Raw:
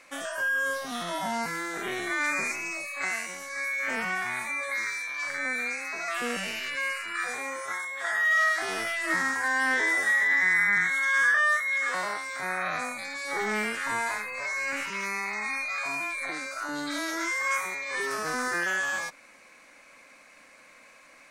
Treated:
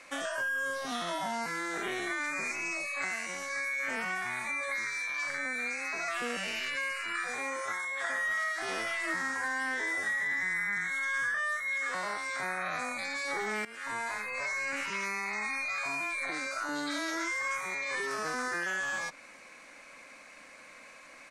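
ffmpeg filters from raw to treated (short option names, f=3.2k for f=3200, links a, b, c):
-filter_complex "[0:a]asplit=2[a][b];[b]afade=t=in:st=7.49:d=0.01,afade=t=out:st=7.91:d=0.01,aecho=0:1:600|1200|1800|2400|3000|3600|4200|4800|5400:0.794328|0.476597|0.285958|0.171575|0.102945|0.061767|0.0370602|0.0222361|0.0133417[c];[a][c]amix=inputs=2:normalize=0,asplit=2[d][e];[d]atrim=end=13.65,asetpts=PTS-STARTPTS,afade=t=out:st=13.646:d=0.004:c=hsin:silence=0.133352[f];[e]atrim=start=13.65,asetpts=PTS-STARTPTS,afade=t=in:d=0.86:silence=0.133352[g];[f][g]concat=n=2:v=0:a=1,lowpass=11k,acrossover=split=220|7800[h][i][j];[h]acompressor=threshold=-56dB:ratio=4[k];[i]acompressor=threshold=-34dB:ratio=4[l];[j]acompressor=threshold=-57dB:ratio=4[m];[k][l][m]amix=inputs=3:normalize=0,volume=2dB"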